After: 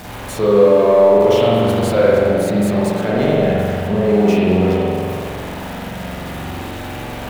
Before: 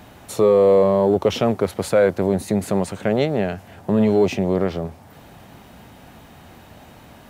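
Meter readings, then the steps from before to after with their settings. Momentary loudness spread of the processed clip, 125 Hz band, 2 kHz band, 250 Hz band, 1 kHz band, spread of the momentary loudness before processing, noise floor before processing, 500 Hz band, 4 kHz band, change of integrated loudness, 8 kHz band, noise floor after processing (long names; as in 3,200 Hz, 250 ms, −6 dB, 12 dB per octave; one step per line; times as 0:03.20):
16 LU, +6.0 dB, +6.5 dB, +4.5 dB, +6.0 dB, 11 LU, −46 dBFS, +5.0 dB, +6.0 dB, +4.5 dB, +2.5 dB, −29 dBFS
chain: converter with a step at zero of −27 dBFS
spring reverb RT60 2.2 s, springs 44 ms, chirp 55 ms, DRR −7 dB
level −4 dB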